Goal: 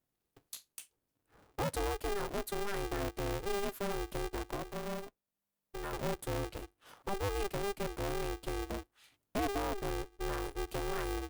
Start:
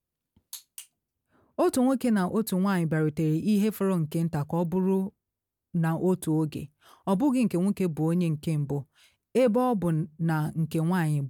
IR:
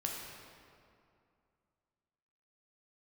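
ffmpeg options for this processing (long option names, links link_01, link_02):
-filter_complex "[0:a]asettb=1/sr,asplit=3[link_01][link_02][link_03];[link_01]atrim=end=4.564[link_04];[link_02]atrim=start=4.56:end=5.93,asetpts=PTS-STARTPTS,afade=type=in:duration=0.004:curve=qsin,afade=type=out:start_time=1.366:duration=0.004:curve=qsin,equalizer=frequency=83:width=0.41:gain=-12.5[link_05];[link_03]atrim=start=5.926[link_06];[link_04][link_05]acrossfade=duration=0.004:curve1=hsin:curve2=qsin[link_07];[link_07][link_06]acrossfade=duration=0.004:curve1=qsin:curve2=hsin,acompressor=threshold=-53dB:ratio=1.5,aeval=exprs='val(0)*sgn(sin(2*PI*200*n/s))':channel_layout=same"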